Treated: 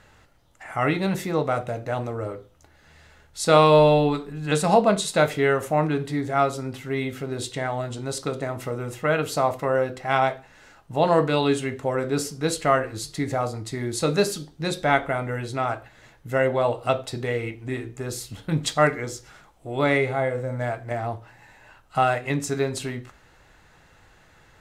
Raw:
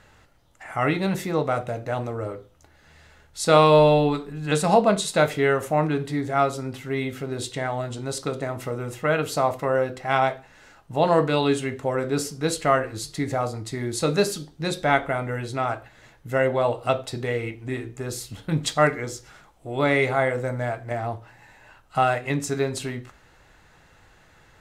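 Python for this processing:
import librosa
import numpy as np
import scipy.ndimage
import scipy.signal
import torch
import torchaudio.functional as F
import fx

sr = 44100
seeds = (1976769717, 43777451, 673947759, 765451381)

y = fx.hpss(x, sr, part='percussive', gain_db=-17, at=(19.97, 20.59), fade=0.02)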